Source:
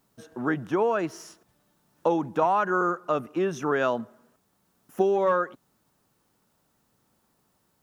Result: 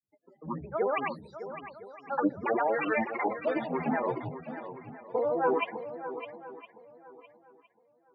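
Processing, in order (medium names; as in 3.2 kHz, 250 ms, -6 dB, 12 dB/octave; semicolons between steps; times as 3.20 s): high-pass 210 Hz 12 dB/octave; treble shelf 7.5 kHz +8.5 dB; de-hum 304.2 Hz, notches 3; loudest bins only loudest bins 16; flange 0.65 Hz, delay 0.6 ms, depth 5.2 ms, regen +66%; granulator, grains 25 per s, spray 100 ms, pitch spread up and down by 12 st; distance through air 190 m; shuffle delay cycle 971 ms, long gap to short 1.5:1, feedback 32%, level -8.5 dB; speed mistake 25 fps video run at 24 fps; three bands expanded up and down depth 40%; trim +2.5 dB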